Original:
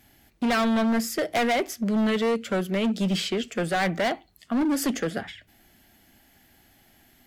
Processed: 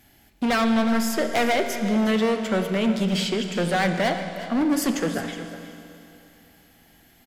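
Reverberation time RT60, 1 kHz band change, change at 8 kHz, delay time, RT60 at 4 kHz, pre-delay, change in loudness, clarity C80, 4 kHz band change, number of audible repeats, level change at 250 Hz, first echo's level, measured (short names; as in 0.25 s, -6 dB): 2.9 s, +2.5 dB, +2.0 dB, 0.364 s, 2.8 s, 23 ms, +2.5 dB, 7.0 dB, +2.5 dB, 1, +2.5 dB, -13.5 dB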